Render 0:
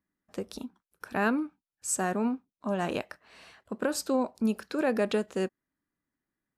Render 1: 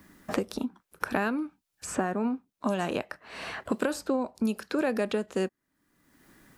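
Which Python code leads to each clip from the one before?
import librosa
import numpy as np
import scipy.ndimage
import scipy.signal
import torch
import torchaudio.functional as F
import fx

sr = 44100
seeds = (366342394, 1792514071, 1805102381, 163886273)

y = fx.band_squash(x, sr, depth_pct=100)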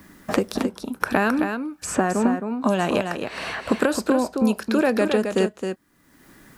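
y = x + 10.0 ** (-6.5 / 20.0) * np.pad(x, (int(266 * sr / 1000.0), 0))[:len(x)]
y = F.gain(torch.from_numpy(y), 7.5).numpy()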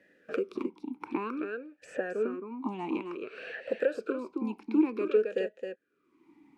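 y = fx.vowel_sweep(x, sr, vowels='e-u', hz=0.54)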